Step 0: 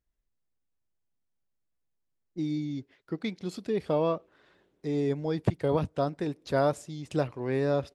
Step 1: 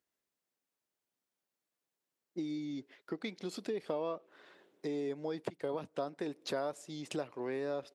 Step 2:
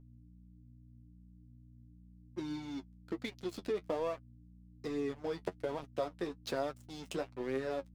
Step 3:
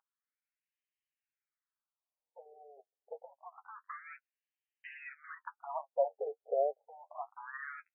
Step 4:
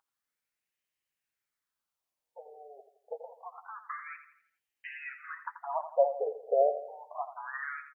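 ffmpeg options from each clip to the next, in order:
-af "acompressor=threshold=-36dB:ratio=6,highpass=280,volume=3.5dB"
-af "aeval=exprs='sgn(val(0))*max(abs(val(0))-0.00422,0)':c=same,aeval=exprs='val(0)+0.00158*(sin(2*PI*60*n/s)+sin(2*PI*2*60*n/s)/2+sin(2*PI*3*60*n/s)/3+sin(2*PI*4*60*n/s)/4+sin(2*PI*5*60*n/s)/5)':c=same,flanger=delay=7.3:depth=4.2:regen=33:speed=1.2:shape=sinusoidal,volume=5.5dB"
-af "afftfilt=real='re*between(b*sr/1024,550*pow(2300/550,0.5+0.5*sin(2*PI*0.27*pts/sr))/1.41,550*pow(2300/550,0.5+0.5*sin(2*PI*0.27*pts/sr))*1.41)':imag='im*between(b*sr/1024,550*pow(2300/550,0.5+0.5*sin(2*PI*0.27*pts/sr))/1.41,550*pow(2300/550,0.5+0.5*sin(2*PI*0.27*pts/sr))*1.41)':win_size=1024:overlap=0.75,volume=6.5dB"
-af "aecho=1:1:84|168|252|336|420:0.282|0.127|0.0571|0.0257|0.0116,volume=5.5dB"

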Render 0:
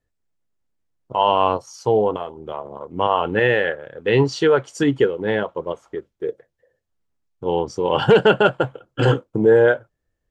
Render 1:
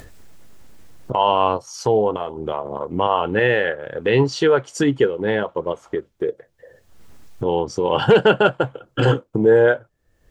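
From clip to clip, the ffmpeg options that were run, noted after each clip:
-af "acompressor=mode=upward:threshold=-16dB:ratio=2.5"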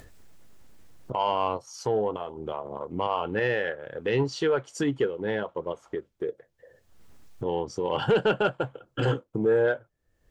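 -af "asoftclip=type=tanh:threshold=-4.5dB,volume=-8dB"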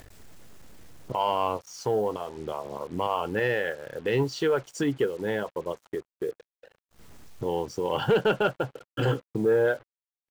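-af "acrusher=bits=7:mix=0:aa=0.5"

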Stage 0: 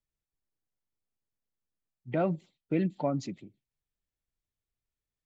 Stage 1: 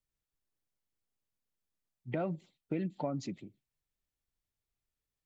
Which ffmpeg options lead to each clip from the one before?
-af "acompressor=threshold=-33dB:ratio=3"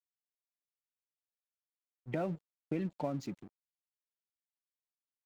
-af "aeval=exprs='sgn(val(0))*max(abs(val(0))-0.002,0)':c=same"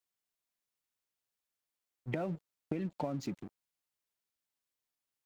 -af "acompressor=threshold=-38dB:ratio=6,volume=5.5dB"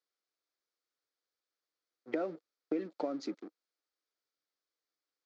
-af "highpass=f=280:w=0.5412,highpass=f=280:w=1.3066,equalizer=f=310:t=q:w=4:g=6,equalizer=f=480:t=q:w=4:g=6,equalizer=f=930:t=q:w=4:g=-5,equalizer=f=1.3k:t=q:w=4:g=5,equalizer=f=2.8k:t=q:w=4:g=-7,equalizer=f=4.6k:t=q:w=4:g=4,lowpass=f=6k:w=0.5412,lowpass=f=6k:w=1.3066"

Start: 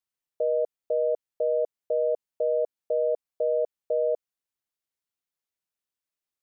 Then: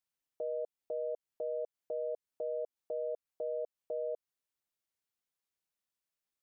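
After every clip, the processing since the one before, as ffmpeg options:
-af "alimiter=level_in=4.5dB:limit=-24dB:level=0:latency=1:release=152,volume=-4.5dB,volume=-1.5dB"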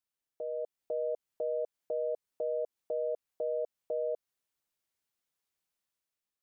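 -af "dynaudnorm=f=180:g=7:m=5.5dB,volume=-2dB"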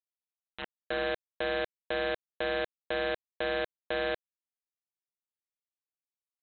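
-af "aeval=exprs='0.0501*(cos(1*acos(clip(val(0)/0.0501,-1,1)))-cos(1*PI/2))+0.000891*(cos(3*acos(clip(val(0)/0.0501,-1,1)))-cos(3*PI/2))':c=same,aresample=8000,acrusher=bits=4:mix=0:aa=0.000001,aresample=44100"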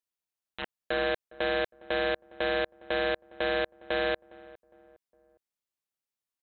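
-filter_complex "[0:a]acontrast=38,asplit=2[a][b];[b]adelay=409,lowpass=f=1.1k:p=1,volume=-19.5dB,asplit=2[c][d];[d]adelay=409,lowpass=f=1.1k:p=1,volume=0.45,asplit=2[e][f];[f]adelay=409,lowpass=f=1.1k:p=1,volume=0.45[g];[a][c][e][g]amix=inputs=4:normalize=0,volume=-2.5dB"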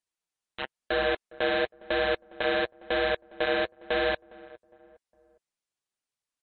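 -af "flanger=delay=0.9:depth=8.9:regen=-22:speed=0.97:shape=triangular,volume=6dB" -ar 32000 -c:a libmp3lame -b:a 40k

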